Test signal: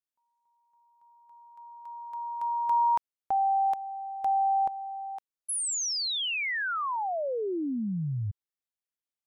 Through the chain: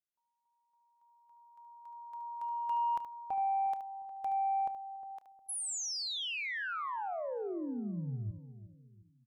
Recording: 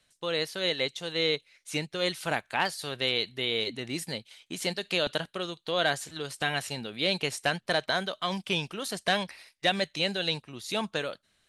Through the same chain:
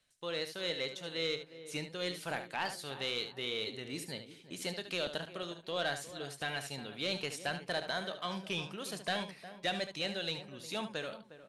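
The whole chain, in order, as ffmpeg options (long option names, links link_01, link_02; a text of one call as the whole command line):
ffmpeg -i in.wav -filter_complex "[0:a]asplit=2[link_01][link_02];[link_02]adelay=358,lowpass=frequency=1200:poles=1,volume=-13.5dB,asplit=2[link_03][link_04];[link_04]adelay=358,lowpass=frequency=1200:poles=1,volume=0.38,asplit=2[link_05][link_06];[link_06]adelay=358,lowpass=frequency=1200:poles=1,volume=0.38,asplit=2[link_07][link_08];[link_08]adelay=358,lowpass=frequency=1200:poles=1,volume=0.38[link_09];[link_03][link_05][link_07][link_09]amix=inputs=4:normalize=0[link_10];[link_01][link_10]amix=inputs=2:normalize=0,asoftclip=type=tanh:threshold=-16dB,asplit=2[link_11][link_12];[link_12]aecho=0:1:29|73:0.15|0.316[link_13];[link_11][link_13]amix=inputs=2:normalize=0,volume=-7.5dB" out.wav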